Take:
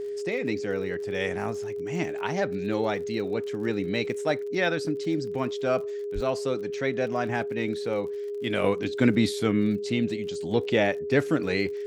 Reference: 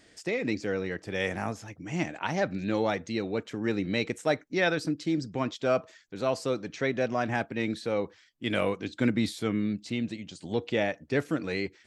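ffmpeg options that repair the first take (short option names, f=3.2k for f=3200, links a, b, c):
-filter_complex "[0:a]adeclick=t=4,bandreject=f=410:w=30,asplit=3[a][b][c];[a]afade=t=out:st=6.14:d=0.02[d];[b]highpass=f=140:w=0.5412,highpass=f=140:w=1.3066,afade=t=in:st=6.14:d=0.02,afade=t=out:st=6.26:d=0.02[e];[c]afade=t=in:st=6.26:d=0.02[f];[d][e][f]amix=inputs=3:normalize=0,asetnsamples=n=441:p=0,asendcmd='8.64 volume volume -4.5dB',volume=0dB"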